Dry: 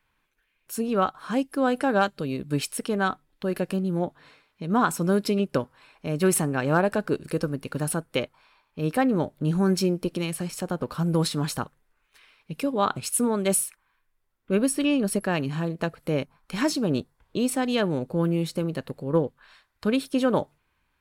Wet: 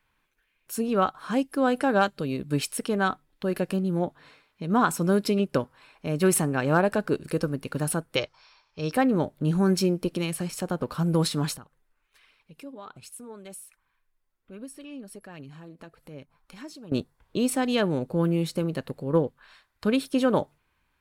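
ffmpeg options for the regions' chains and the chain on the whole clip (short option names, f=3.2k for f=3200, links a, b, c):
-filter_complex "[0:a]asettb=1/sr,asplit=3[a][b][c];[a]atrim=end=8.164[d];[b]atrim=start=8.16:end=8.92,asetpts=PTS-STARTPTS,afade=t=in:d=0.004:c=qsin,afade=t=out:st=0.756:d=0.004:c=qsin,lowpass=f=5.4k:t=q:w=6.1,equalizer=f=230:t=o:w=0.59:g=-14[e];[c]atrim=start=8.916[f];[d][e]acrossfade=d=0.004:c1=hsin:c2=qsin[g];[g][f]acrossfade=d=0.004:c1=qsin:c2=hsin,asettb=1/sr,asplit=3[h][i][j];[h]atrim=end=11.564[k];[i]atrim=start=11.56:end=16.92,asetpts=PTS-STARTPTS,afade=t=in:d=0.004:c=qsin,afade=t=out:st=5.356:d=0.004:c=qsin,acompressor=threshold=-47dB:ratio=2:attack=3.2:release=140:knee=1:detection=peak,flanger=delay=0.1:depth=3.9:regen=58:speed=1.3:shape=triangular[l];[j]atrim=start=16.916[m];[k][l]acrossfade=d=0.004:c1=hsin:c2=qsin[n];[n][m]acrossfade=d=0.004:c1=qsin:c2=hsin"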